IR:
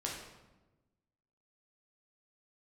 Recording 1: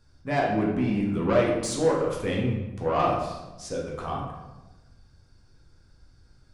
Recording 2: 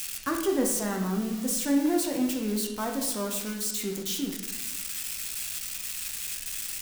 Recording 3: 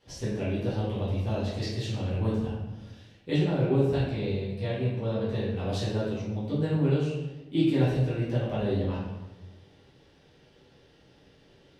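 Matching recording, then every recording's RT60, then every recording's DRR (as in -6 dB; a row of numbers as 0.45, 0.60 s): 1; 1.1, 1.1, 1.1 s; -3.5, 1.5, -11.0 dB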